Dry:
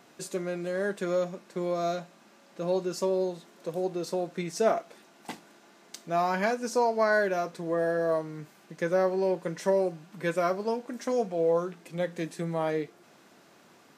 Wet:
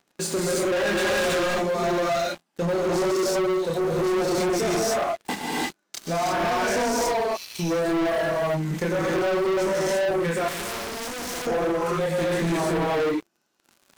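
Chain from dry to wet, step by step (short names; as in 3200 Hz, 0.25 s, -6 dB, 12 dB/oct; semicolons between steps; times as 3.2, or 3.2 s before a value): limiter -22 dBFS, peak gain reduction 10.5 dB; reverb removal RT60 1.9 s; 0.72–1.31 overdrive pedal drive 26 dB, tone 4000 Hz, clips at -23 dBFS; chorus voices 6, 0.98 Hz, delay 27 ms, depth 3.3 ms; 7.02–7.59 steep high-pass 2500 Hz 72 dB/oct; non-linear reverb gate 0.36 s rising, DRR -6 dB; sample leveller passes 5; compressor 2:1, threshold -22 dBFS, peak gain reduction 3.5 dB; 10.48–11.47 spectral compressor 2:1; gain -2.5 dB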